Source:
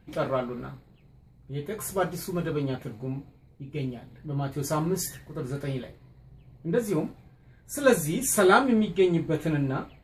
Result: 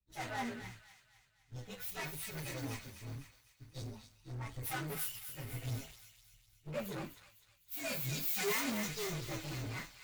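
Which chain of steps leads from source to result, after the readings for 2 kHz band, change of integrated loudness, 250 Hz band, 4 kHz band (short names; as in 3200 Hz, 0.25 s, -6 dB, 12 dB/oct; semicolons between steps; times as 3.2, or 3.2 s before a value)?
-9.0 dB, -12.5 dB, -17.0 dB, -4.5 dB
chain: inharmonic rescaling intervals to 124%; passive tone stack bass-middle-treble 5-5-5; short-mantissa float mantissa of 2-bit; tube stage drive 52 dB, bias 0.7; flange 0.44 Hz, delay 1.4 ms, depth 6.7 ms, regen +69%; on a send: thin delay 0.252 s, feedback 71%, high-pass 1400 Hz, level -4.5 dB; on the sum: three-band expander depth 100%; gain +18 dB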